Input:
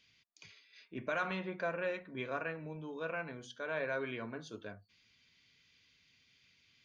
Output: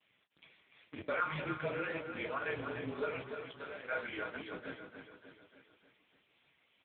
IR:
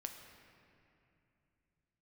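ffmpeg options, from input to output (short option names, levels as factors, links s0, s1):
-filter_complex "[0:a]lowshelf=f=180:g=-11,aecho=1:1:6.2:0.99,adynamicequalizer=threshold=0.00447:dfrequency=690:dqfactor=0.93:tfrequency=690:tqfactor=0.93:attack=5:release=100:ratio=0.375:range=2.5:mode=cutabove:tftype=bell,asplit=2[s0][s1];[s1]alimiter=level_in=2.66:limit=0.0631:level=0:latency=1:release=167,volume=0.376,volume=0.708[s2];[s0][s2]amix=inputs=2:normalize=0,asettb=1/sr,asplit=3[s3][s4][s5];[s3]atrim=end=3.174[s6];[s4]atrim=start=3.17:end=3.88,asetpts=PTS-STARTPTS,afade=t=in:d=0.004:c=qsin,afade=t=out:st=0.706:d=0.004:c=qsin,acompressor=threshold=0.01:ratio=8[s7];[s5]atrim=start=3.876[s8];[s6][s7]acrossfade=d=0.004:c1=hsin:c2=qsin[s9];[s9][s8]acrossfade=d=0.004:c1=qsin:c2=hsin,flanger=delay=16.5:depth=7.3:speed=2,afreqshift=-36,acrusher=bits=8:dc=4:mix=0:aa=0.000001,asplit=2[s10][s11];[s11]aecho=0:1:295|590|885|1180|1475|1770:0.447|0.232|0.121|0.0628|0.0327|0.017[s12];[s10][s12]amix=inputs=2:normalize=0,volume=1.12" -ar 8000 -c:a libopencore_amrnb -b:a 6700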